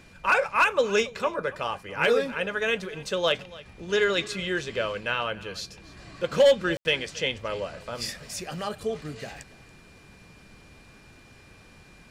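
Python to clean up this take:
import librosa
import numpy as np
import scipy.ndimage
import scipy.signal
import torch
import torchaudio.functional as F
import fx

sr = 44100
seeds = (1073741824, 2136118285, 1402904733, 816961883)

y = fx.notch(x, sr, hz=2400.0, q=30.0)
y = fx.fix_ambience(y, sr, seeds[0], print_start_s=11.22, print_end_s=11.72, start_s=6.77, end_s=6.85)
y = fx.fix_echo_inverse(y, sr, delay_ms=281, level_db=-20.0)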